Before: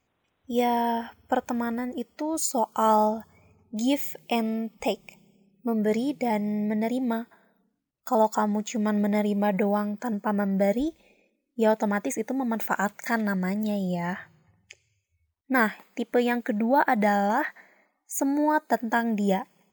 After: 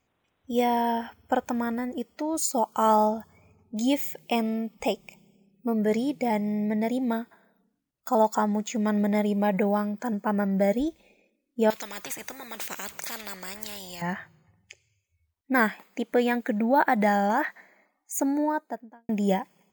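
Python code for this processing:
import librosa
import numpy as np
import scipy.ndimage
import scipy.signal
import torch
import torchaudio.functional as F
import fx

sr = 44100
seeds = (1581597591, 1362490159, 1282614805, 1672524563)

y = fx.spectral_comp(x, sr, ratio=4.0, at=(11.7, 14.02))
y = fx.studio_fade_out(y, sr, start_s=18.17, length_s=0.92)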